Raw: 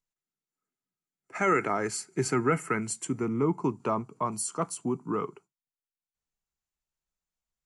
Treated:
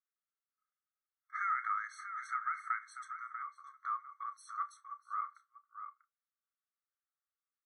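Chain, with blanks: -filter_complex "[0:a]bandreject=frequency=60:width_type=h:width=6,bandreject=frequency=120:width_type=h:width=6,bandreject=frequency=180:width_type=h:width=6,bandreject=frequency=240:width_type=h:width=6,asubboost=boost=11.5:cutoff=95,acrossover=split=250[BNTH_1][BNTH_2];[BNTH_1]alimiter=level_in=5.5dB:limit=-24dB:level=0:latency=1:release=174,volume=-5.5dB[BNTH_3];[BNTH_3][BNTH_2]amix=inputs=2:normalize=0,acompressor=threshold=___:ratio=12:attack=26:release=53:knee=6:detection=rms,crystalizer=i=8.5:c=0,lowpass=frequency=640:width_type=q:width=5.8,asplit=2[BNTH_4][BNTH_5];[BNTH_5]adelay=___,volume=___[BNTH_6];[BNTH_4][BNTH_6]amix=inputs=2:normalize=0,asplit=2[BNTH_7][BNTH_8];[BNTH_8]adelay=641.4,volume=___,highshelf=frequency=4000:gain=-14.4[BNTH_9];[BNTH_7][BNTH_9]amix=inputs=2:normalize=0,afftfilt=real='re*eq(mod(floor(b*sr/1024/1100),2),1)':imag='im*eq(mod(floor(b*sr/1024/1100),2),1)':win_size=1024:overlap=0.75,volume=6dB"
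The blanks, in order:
-31dB, 31, -13dB, -8dB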